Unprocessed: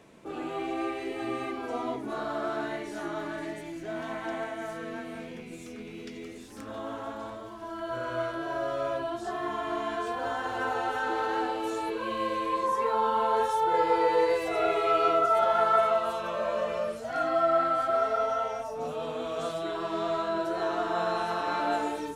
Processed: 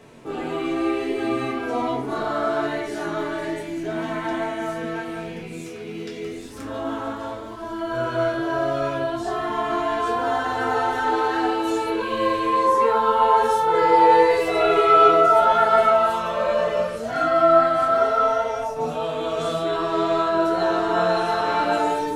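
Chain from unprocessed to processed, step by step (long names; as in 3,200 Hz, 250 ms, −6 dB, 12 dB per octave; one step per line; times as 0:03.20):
0:05.48–0:06.26: high-pass filter 90 Hz
convolution reverb RT60 0.45 s, pre-delay 4 ms, DRR −0.5 dB
level +4.5 dB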